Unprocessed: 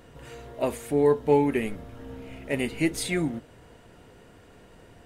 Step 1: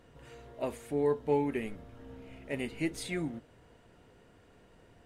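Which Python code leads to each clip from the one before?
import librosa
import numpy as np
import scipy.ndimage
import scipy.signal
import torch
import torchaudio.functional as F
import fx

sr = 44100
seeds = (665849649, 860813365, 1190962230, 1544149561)

y = fx.high_shelf(x, sr, hz=10000.0, db=-7.0)
y = F.gain(torch.from_numpy(y), -8.0).numpy()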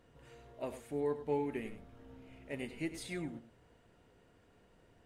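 y = x + 10.0 ** (-12.0 / 20.0) * np.pad(x, (int(100 * sr / 1000.0), 0))[:len(x)]
y = F.gain(torch.from_numpy(y), -6.0).numpy()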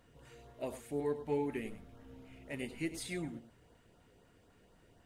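y = fx.filter_lfo_notch(x, sr, shape='saw_up', hz=4.0, low_hz=330.0, high_hz=2900.0, q=2.2)
y = fx.high_shelf(y, sr, hz=6000.0, db=4.5)
y = F.gain(torch.from_numpy(y), 1.0).numpy()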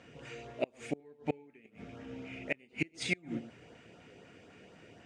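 y = fx.gate_flip(x, sr, shuts_db=-30.0, range_db=-31)
y = fx.cabinet(y, sr, low_hz=130.0, low_slope=12, high_hz=6800.0, hz=(1000.0, 2400.0, 4100.0), db=(-6, 8, -5))
y = F.gain(torch.from_numpy(y), 10.5).numpy()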